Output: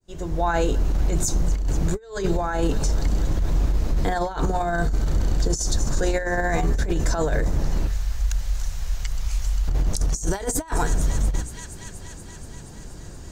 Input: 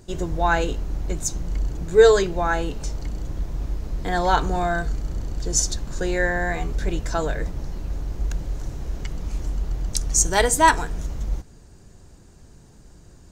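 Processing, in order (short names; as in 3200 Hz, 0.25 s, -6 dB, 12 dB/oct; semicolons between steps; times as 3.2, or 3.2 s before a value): opening faded in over 0.97 s; 7.87–9.68 passive tone stack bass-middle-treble 10-0-10; notches 60/120/180/240/300/360/420 Hz; on a send: thin delay 0.238 s, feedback 76%, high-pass 2300 Hz, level -22.5 dB; on the sum: negative-ratio compressor -25 dBFS, ratio -0.5; in parallel at +2 dB: limiter -22.5 dBFS, peak gain reduction 12 dB; on the sum: dynamic EQ 2700 Hz, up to -6 dB, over -41 dBFS, Q 0.97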